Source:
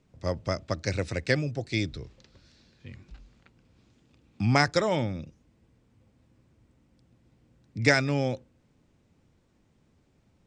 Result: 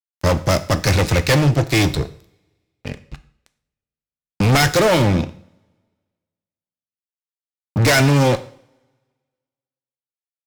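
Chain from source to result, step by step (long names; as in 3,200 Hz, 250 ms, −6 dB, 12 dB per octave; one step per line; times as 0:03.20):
fuzz pedal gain 34 dB, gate −42 dBFS
coupled-rooms reverb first 0.52 s, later 1.6 s, from −24 dB, DRR 11 dB
level +1 dB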